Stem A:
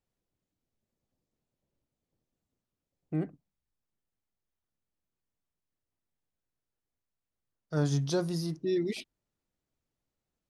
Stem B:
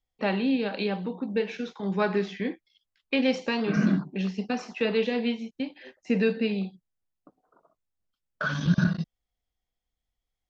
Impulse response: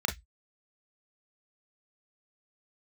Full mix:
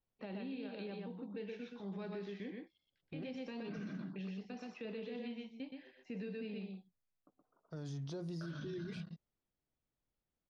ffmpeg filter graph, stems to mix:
-filter_complex "[0:a]lowpass=6.5k,highshelf=f=4.3k:g=-8.5,volume=-4.5dB[a];[1:a]lowpass=4.9k,volume=-14.5dB,asplit=2[b][c];[c]volume=-4.5dB,aecho=0:1:122:1[d];[a][b][d]amix=inputs=3:normalize=0,acrossover=split=620|2300[e][f][g];[e]acompressor=threshold=-38dB:ratio=4[h];[f]acompressor=threshold=-57dB:ratio=4[i];[g]acompressor=threshold=-55dB:ratio=4[j];[h][i][j]amix=inputs=3:normalize=0,alimiter=level_in=12.5dB:limit=-24dB:level=0:latency=1:release=29,volume=-12.5dB"

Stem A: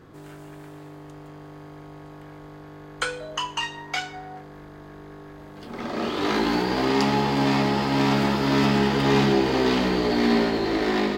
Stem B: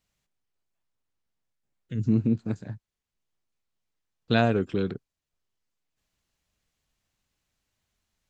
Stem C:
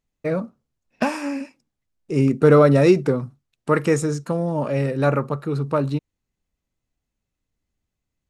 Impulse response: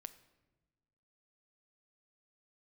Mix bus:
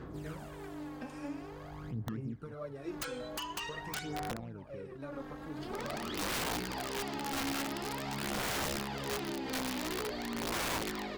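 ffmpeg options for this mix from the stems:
-filter_complex "[0:a]acompressor=threshold=-28dB:ratio=10,volume=-4.5dB[a];[1:a]acrusher=samples=17:mix=1:aa=0.000001:lfo=1:lforange=27.2:lforate=3.9,lowpass=1.8k,volume=-10dB,asplit=2[b][c];[2:a]flanger=delay=6.8:depth=6.7:regen=-42:speed=1.1:shape=sinusoidal,volume=-14dB[d];[c]apad=whole_len=492842[e];[a][e]sidechaincompress=threshold=-59dB:ratio=3:attack=9:release=185[f];[b][d]amix=inputs=2:normalize=0,aeval=exprs='val(0)+0.00112*(sin(2*PI*60*n/s)+sin(2*PI*2*60*n/s)/2+sin(2*PI*3*60*n/s)/3+sin(2*PI*4*60*n/s)/4+sin(2*PI*5*60*n/s)/5)':c=same,acompressor=threshold=-42dB:ratio=8,volume=0dB[g];[f][g]amix=inputs=2:normalize=0,aphaser=in_gain=1:out_gain=1:delay=3.8:decay=0.6:speed=0.47:type=sinusoidal,aeval=exprs='(mod(22.4*val(0)+1,2)-1)/22.4':c=same,alimiter=level_in=6dB:limit=-24dB:level=0:latency=1:release=362,volume=-6dB"

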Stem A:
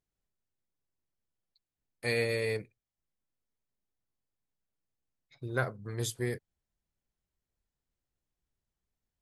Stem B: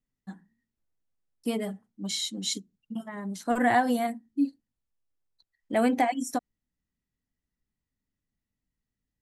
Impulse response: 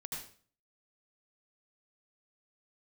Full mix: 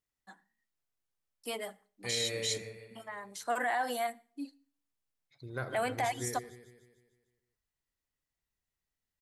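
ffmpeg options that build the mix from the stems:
-filter_complex "[0:a]volume=-8dB,asplit=3[a][b][c];[b]volume=-10.5dB[d];[c]volume=-7.5dB[e];[1:a]highpass=670,volume=-0.5dB,asplit=2[f][g];[g]volume=-23.5dB[h];[2:a]atrim=start_sample=2205[i];[d][h]amix=inputs=2:normalize=0[j];[j][i]afir=irnorm=-1:irlink=0[k];[e]aecho=0:1:150|300|450|600|750|900|1050|1200:1|0.52|0.27|0.141|0.0731|0.038|0.0198|0.0103[l];[a][f][k][l]amix=inputs=4:normalize=0,alimiter=limit=-23dB:level=0:latency=1:release=17"

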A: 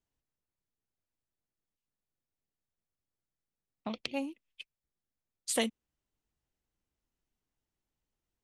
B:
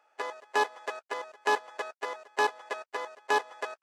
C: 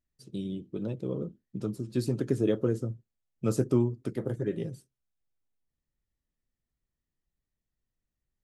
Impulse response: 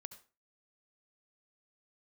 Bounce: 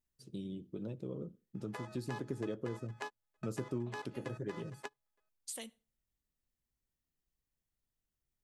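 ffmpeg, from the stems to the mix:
-filter_complex "[0:a]crystalizer=i=2:c=0,volume=-13.5dB,asplit=2[a][b];[b]volume=-13.5dB[c];[1:a]asubboost=boost=9.5:cutoff=210,adelay=1550,volume=-1.5dB[d];[2:a]volume=-5.5dB,asplit=3[e][f][g];[f]volume=-13dB[h];[g]apad=whole_len=236914[i];[d][i]sidechaingate=range=-45dB:threshold=-57dB:ratio=16:detection=peak[j];[a][j]amix=inputs=2:normalize=0,acompressor=threshold=-43dB:ratio=2,volume=0dB[k];[3:a]atrim=start_sample=2205[l];[c][h]amix=inputs=2:normalize=0[m];[m][l]afir=irnorm=-1:irlink=0[n];[e][k][n]amix=inputs=3:normalize=0,acompressor=threshold=-41dB:ratio=2"

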